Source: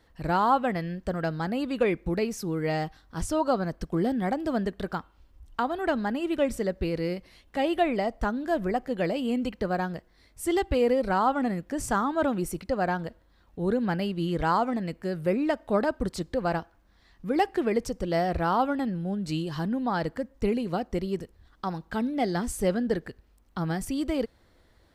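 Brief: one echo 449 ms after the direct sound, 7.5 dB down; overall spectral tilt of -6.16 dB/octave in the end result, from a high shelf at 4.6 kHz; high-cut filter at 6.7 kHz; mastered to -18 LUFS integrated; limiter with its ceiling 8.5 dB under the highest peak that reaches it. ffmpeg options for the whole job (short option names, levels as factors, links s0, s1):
-af "lowpass=6700,highshelf=f=4600:g=-6.5,alimiter=limit=0.106:level=0:latency=1,aecho=1:1:449:0.422,volume=3.98"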